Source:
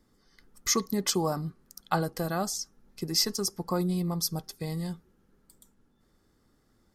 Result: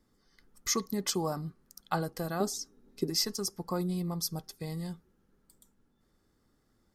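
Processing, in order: 2.40–3.10 s: small resonant body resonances 280/400/3800 Hz, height 13 dB; trim -4 dB

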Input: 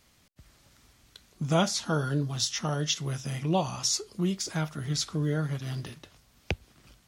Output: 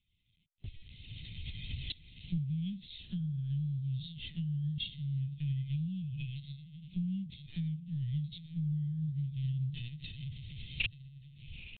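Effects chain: recorder AGC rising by 25 dB/s; inverse Chebyshev band-stop 370–1300 Hz, stop band 50 dB; gate -50 dBFS, range -13 dB; compression 2.5:1, threshold -36 dBFS, peak gain reduction 17.5 dB; tempo 0.6×; on a send: echo that smears into a reverb 922 ms, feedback 50%, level -14 dB; on the sum: LPC vocoder at 8 kHz pitch kept

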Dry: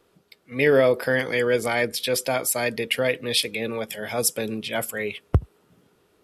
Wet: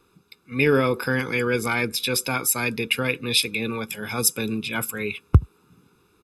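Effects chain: comb 0.8 ms, depth 79%

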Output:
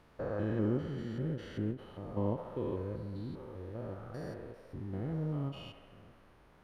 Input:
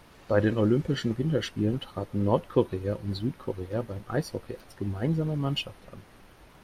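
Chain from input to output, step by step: spectrogram pixelated in time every 200 ms; treble shelf 2.7 kHz -8.5 dB; feedback echo behind a band-pass 68 ms, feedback 71%, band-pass 1.1 kHz, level -6 dB; endings held to a fixed fall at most 190 dB/s; trim -6.5 dB

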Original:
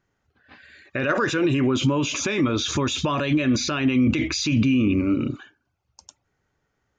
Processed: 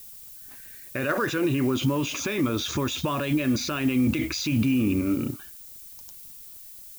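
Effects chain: added noise violet -38 dBFS; in parallel at -6.5 dB: hysteresis with a dead band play -23 dBFS; on the sum: trim -6.5 dB

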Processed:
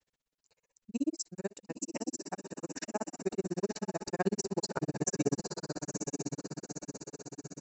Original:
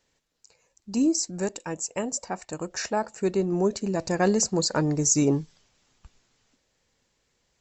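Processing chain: on a send: echo that smears into a reverb 944 ms, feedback 52%, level -4.5 dB; on the sum: granulator 42 ms, grains 16 per s, spray 17 ms, pitch spread up and down by 0 st; trim -5.5 dB

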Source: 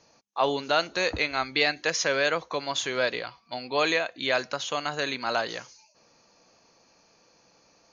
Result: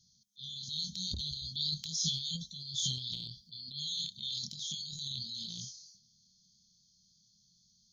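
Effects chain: brick-wall FIR band-stop 220–3100 Hz; chorus 0.38 Hz, depth 5.2 ms; transient shaper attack -2 dB, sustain +12 dB; trim -1 dB

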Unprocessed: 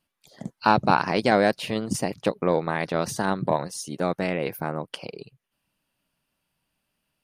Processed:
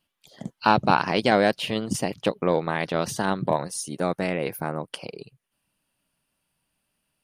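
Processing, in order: peaking EQ 3.1 kHz +6.5 dB 0.38 oct, from 3.53 s 9.6 kHz

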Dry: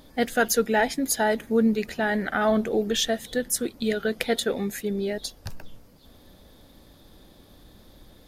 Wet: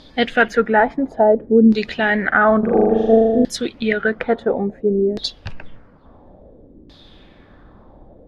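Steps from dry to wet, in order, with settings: LFO low-pass saw down 0.58 Hz 300–4600 Hz; 2.59–3.45 s: flutter echo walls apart 6.9 m, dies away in 1.4 s; trim +5.5 dB

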